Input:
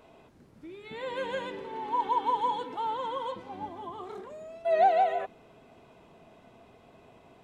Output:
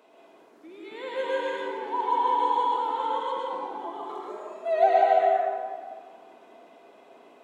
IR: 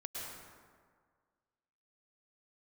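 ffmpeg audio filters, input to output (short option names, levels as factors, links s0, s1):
-filter_complex "[0:a]aeval=exprs='val(0)+0.001*(sin(2*PI*60*n/s)+sin(2*PI*2*60*n/s)/2+sin(2*PI*3*60*n/s)/3+sin(2*PI*4*60*n/s)/4+sin(2*PI*5*60*n/s)/5)':c=same,highpass=f=280:w=0.5412,highpass=f=280:w=1.3066[s0];[1:a]atrim=start_sample=2205[s1];[s0][s1]afir=irnorm=-1:irlink=0,volume=1.58"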